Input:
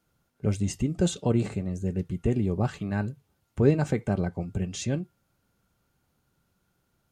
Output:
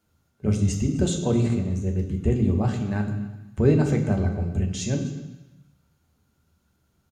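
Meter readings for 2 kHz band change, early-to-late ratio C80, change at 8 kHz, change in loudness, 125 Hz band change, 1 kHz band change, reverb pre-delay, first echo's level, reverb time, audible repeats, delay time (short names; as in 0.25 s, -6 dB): +1.5 dB, 9.5 dB, +3.5 dB, +3.5 dB, +5.0 dB, +1.5 dB, 3 ms, -20.0 dB, 1.0 s, 1, 0.255 s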